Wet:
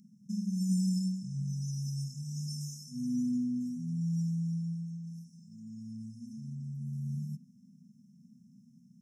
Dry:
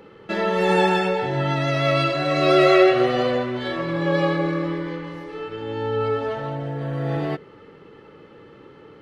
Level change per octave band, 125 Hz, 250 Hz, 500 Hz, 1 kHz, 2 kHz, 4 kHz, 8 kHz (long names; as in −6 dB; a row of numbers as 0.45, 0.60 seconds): −7.0 dB, −8.5 dB, below −40 dB, below −40 dB, below −40 dB, −21.0 dB, can't be measured